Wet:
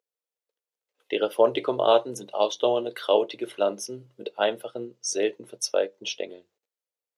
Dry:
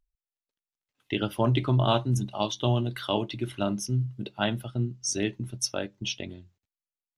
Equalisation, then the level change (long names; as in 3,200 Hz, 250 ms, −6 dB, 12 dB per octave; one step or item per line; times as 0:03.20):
high-pass with resonance 480 Hz, resonance Q 5.8
0.0 dB